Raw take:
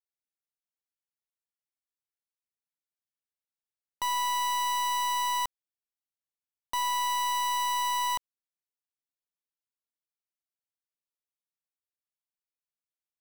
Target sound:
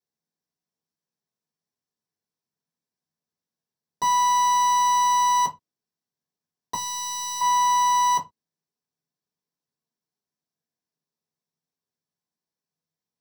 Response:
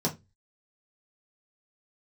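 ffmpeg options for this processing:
-filter_complex "[0:a]asettb=1/sr,asplit=3[link_01][link_02][link_03];[link_01]atrim=end=6.744[link_04];[link_02]atrim=start=6.74:end=7.41,asetpts=PTS-STARTPTS,afade=type=in:duration=0.004:curve=qsin,afade=type=out:start_time=0.666:duration=0.004:curve=qsin,acrossover=split=140|3000[link_05][link_06][link_07];[link_06]acompressor=threshold=-47dB:ratio=4[link_08];[link_05][link_08][link_07]amix=inputs=3:normalize=0[link_09];[link_03]atrim=start=7.406[link_10];[link_04][link_09]acrossfade=duration=0.004:curve1=hsin:curve2=qsin[link_11];[link_11][link_10]acrossfade=duration=0.004:curve1=qsin:curve2=hsin[link_12];[1:a]atrim=start_sample=2205,afade=type=out:start_time=0.18:duration=0.01,atrim=end_sample=8379[link_13];[link_12][link_13]afir=irnorm=-1:irlink=0,volume=-2.5dB"

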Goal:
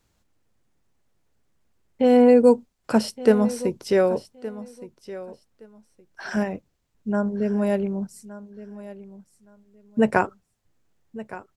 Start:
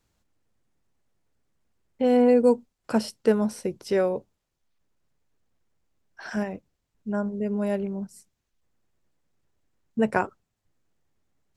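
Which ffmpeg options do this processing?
ffmpeg -i in.wav -af "aecho=1:1:1168|2336:0.15|0.0284,volume=4dB" out.wav

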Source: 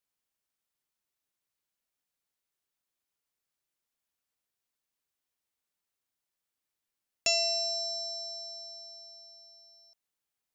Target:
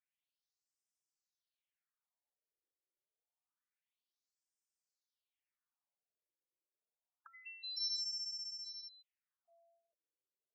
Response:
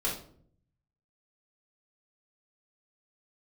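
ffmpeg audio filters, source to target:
-af "flanger=delay=4:depth=3.4:regen=-36:speed=0.27:shape=sinusoidal,afftfilt=real='re*between(b*sr/1024,400*pow(6900/400,0.5+0.5*sin(2*PI*0.27*pts/sr))/1.41,400*pow(6900/400,0.5+0.5*sin(2*PI*0.27*pts/sr))*1.41)':imag='im*between(b*sr/1024,400*pow(6900/400,0.5+0.5*sin(2*PI*0.27*pts/sr))/1.41,400*pow(6900/400,0.5+0.5*sin(2*PI*0.27*pts/sr))*1.41)':win_size=1024:overlap=0.75,volume=1.5dB"

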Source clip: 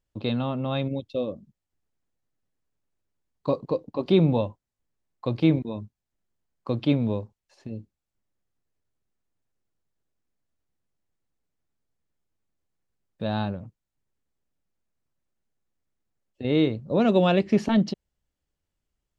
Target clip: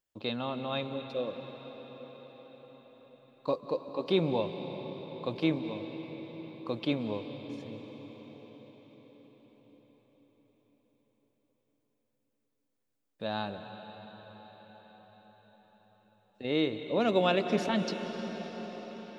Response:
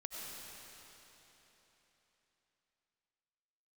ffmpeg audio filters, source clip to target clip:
-filter_complex "[0:a]lowpass=frequency=2300:poles=1,aemphasis=mode=production:type=riaa,asplit=2[link_01][link_02];[1:a]atrim=start_sample=2205,asetrate=24255,aresample=44100[link_03];[link_02][link_03]afir=irnorm=-1:irlink=0,volume=-7dB[link_04];[link_01][link_04]amix=inputs=2:normalize=0,volume=-5dB"

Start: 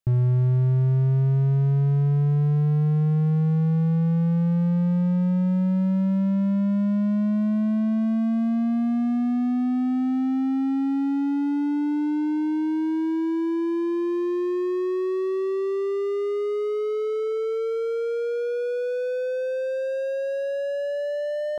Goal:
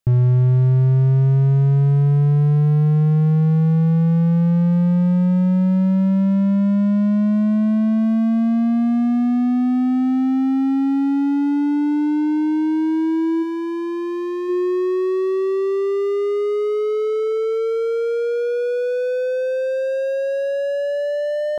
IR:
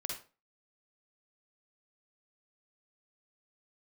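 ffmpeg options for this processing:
-filter_complex "[0:a]asplit=3[link_01][link_02][link_03];[link_01]afade=type=out:start_time=13.42:duration=0.02[link_04];[link_02]asubboost=boost=11:cutoff=88,afade=type=in:start_time=13.42:duration=0.02,afade=type=out:start_time=14.48:duration=0.02[link_05];[link_03]afade=type=in:start_time=14.48:duration=0.02[link_06];[link_04][link_05][link_06]amix=inputs=3:normalize=0,volume=5.5dB"

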